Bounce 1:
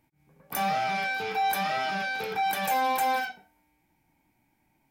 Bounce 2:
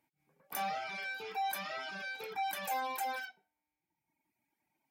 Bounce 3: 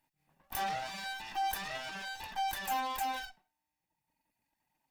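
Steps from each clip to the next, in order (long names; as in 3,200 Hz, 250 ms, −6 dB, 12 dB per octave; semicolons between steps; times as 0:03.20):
reverb reduction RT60 1.4 s; high-pass filter 370 Hz 6 dB per octave; level −7 dB
lower of the sound and its delayed copy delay 1.1 ms; level +2.5 dB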